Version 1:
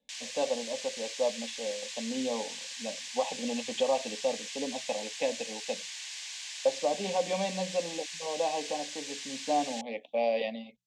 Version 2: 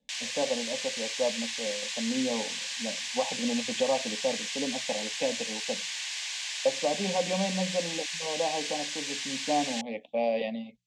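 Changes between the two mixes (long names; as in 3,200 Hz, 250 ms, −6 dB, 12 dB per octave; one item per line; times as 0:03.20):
background +8.0 dB
master: add bass and treble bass +9 dB, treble −4 dB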